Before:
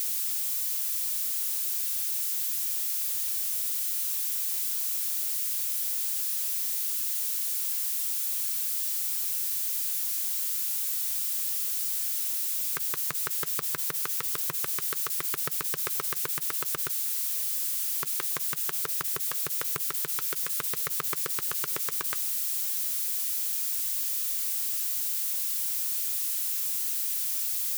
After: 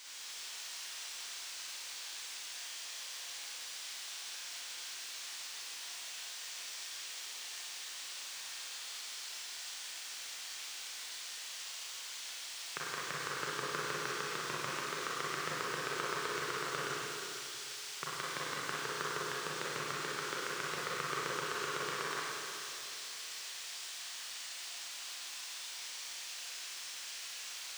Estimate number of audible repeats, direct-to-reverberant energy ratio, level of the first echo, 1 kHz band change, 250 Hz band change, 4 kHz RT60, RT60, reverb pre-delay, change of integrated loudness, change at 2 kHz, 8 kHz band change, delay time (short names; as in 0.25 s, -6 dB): none, -7.5 dB, none, +2.5 dB, +1.0 dB, 2.6 s, 2.6 s, 31 ms, -13.0 dB, +2.0 dB, -12.0 dB, none